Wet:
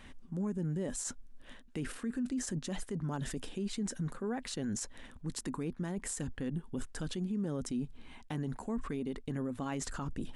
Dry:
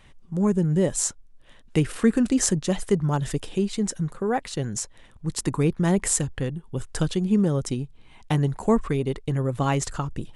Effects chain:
reversed playback
downward compressor 10 to 1, threshold −29 dBFS, peak gain reduction 16 dB
reversed playback
thirty-one-band graphic EQ 125 Hz −9 dB, 250 Hz +11 dB, 1,600 Hz +4 dB
brickwall limiter −29 dBFS, peak gain reduction 14 dB

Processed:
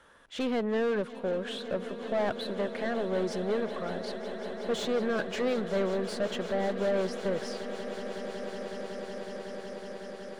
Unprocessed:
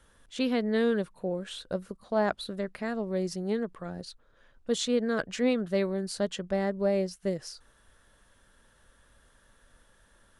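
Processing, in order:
mid-hump overdrive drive 24 dB, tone 1,400 Hz, clips at −13.5 dBFS
on a send: echo that builds up and dies away 185 ms, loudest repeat 8, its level −16 dB
on the sum: level −7 dB

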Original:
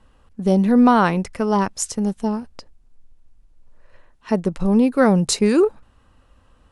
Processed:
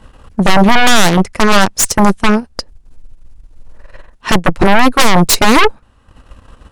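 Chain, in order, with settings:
transient designer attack +4 dB, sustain −10 dB
harmonic generator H 8 −15 dB, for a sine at −1 dBFS
sine wavefolder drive 16 dB, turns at 0.5 dBFS
level −4.5 dB

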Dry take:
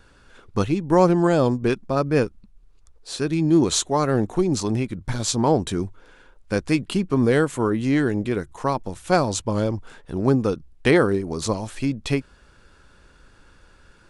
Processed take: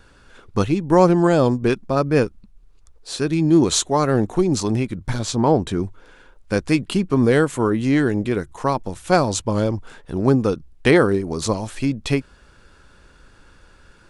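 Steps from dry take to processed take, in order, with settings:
0:05.19–0:05.84: high-shelf EQ 4,300 Hz −9 dB
level +2.5 dB

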